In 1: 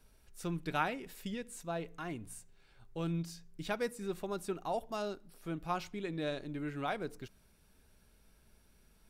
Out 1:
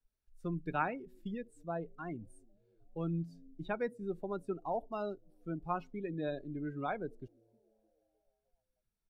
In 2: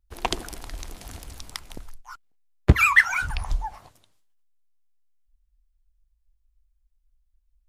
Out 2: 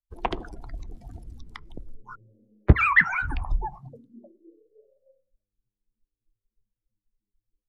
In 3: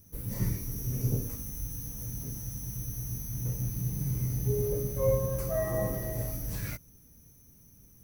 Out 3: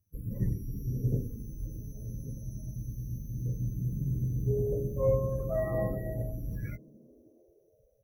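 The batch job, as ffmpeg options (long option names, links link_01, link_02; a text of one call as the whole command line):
ffmpeg -i in.wav -filter_complex "[0:a]afftdn=noise_reduction=25:noise_floor=-39,acrossover=split=2900[link_01][link_02];[link_02]acompressor=threshold=-58dB:ratio=4:attack=1:release=60[link_03];[link_01][link_03]amix=inputs=2:normalize=0,equalizer=frequency=2600:width_type=o:width=0.41:gain=-2,aeval=exprs='0.891*(cos(1*acos(clip(val(0)/0.891,-1,1)))-cos(1*PI/2))+0.0251*(cos(2*acos(clip(val(0)/0.891,-1,1)))-cos(2*PI/2))':channel_layout=same,acrossover=split=220|1700|4900[link_04][link_05][link_06][link_07];[link_04]asplit=6[link_08][link_09][link_10][link_11][link_12][link_13];[link_09]adelay=308,afreqshift=100,volume=-21.5dB[link_14];[link_10]adelay=616,afreqshift=200,volume=-25.7dB[link_15];[link_11]adelay=924,afreqshift=300,volume=-29.8dB[link_16];[link_12]adelay=1232,afreqshift=400,volume=-34dB[link_17];[link_13]adelay=1540,afreqshift=500,volume=-38.1dB[link_18];[link_08][link_14][link_15][link_16][link_17][link_18]amix=inputs=6:normalize=0[link_19];[link_19][link_05][link_06][link_07]amix=inputs=4:normalize=0" out.wav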